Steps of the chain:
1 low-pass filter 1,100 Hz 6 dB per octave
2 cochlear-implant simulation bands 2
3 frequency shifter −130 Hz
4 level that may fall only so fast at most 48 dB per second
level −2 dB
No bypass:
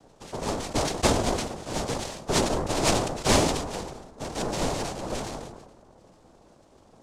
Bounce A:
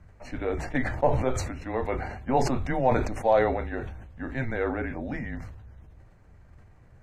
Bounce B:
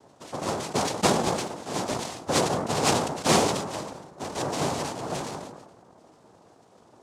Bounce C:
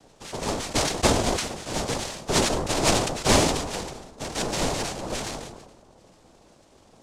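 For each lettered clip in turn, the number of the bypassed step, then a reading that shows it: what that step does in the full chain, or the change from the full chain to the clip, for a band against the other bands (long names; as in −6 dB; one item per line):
2, 4 kHz band −17.0 dB
3, 1 kHz band +2.0 dB
1, 4 kHz band +2.5 dB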